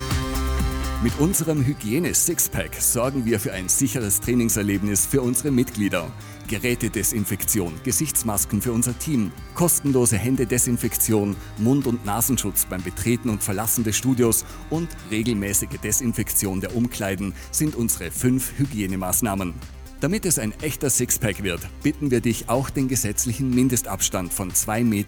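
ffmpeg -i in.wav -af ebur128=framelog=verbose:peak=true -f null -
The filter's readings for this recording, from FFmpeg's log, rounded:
Integrated loudness:
  I:         -21.9 LUFS
  Threshold: -32.0 LUFS
Loudness range:
  LRA:         2.6 LU
  Threshold: -42.0 LUFS
  LRA low:   -23.3 LUFS
  LRA high:  -20.7 LUFS
True peak:
  Peak:       -7.0 dBFS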